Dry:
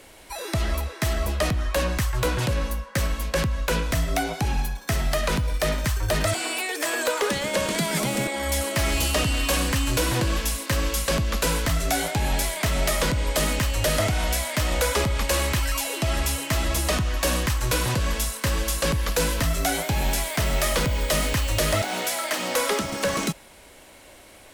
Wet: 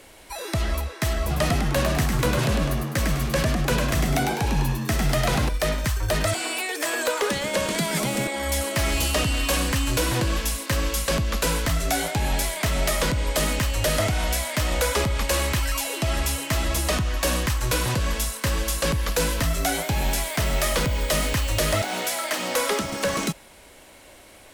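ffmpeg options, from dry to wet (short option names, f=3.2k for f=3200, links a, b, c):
-filter_complex "[0:a]asettb=1/sr,asplit=3[a][b][c];[a]atrim=end=1.204[d];[b]atrim=start=1.2:end=5.49,asetpts=PTS-STARTPTS,afade=t=in:d=0.004:c=qsin,afade=t=out:st=4.286:d=0.004:c=qsin,asplit=7[e][f][g][h][i][j][k];[f]adelay=102,afreqshift=87,volume=-4dB[l];[g]adelay=204,afreqshift=174,volume=-10.7dB[m];[h]adelay=306,afreqshift=261,volume=-17.5dB[n];[i]adelay=408,afreqshift=348,volume=-24.2dB[o];[j]adelay=510,afreqshift=435,volume=-31dB[p];[k]adelay=612,afreqshift=522,volume=-37.7dB[q];[e][l][m][n][o][p][q]amix=inputs=7:normalize=0,atrim=end_sample=189189[r];[c]atrim=start=5.486[s];[d][r]acrossfade=d=0.004:c1=hsin:c2=qsin[t];[t][s]acrossfade=d=0.004:c1=qsin:c2=hsin"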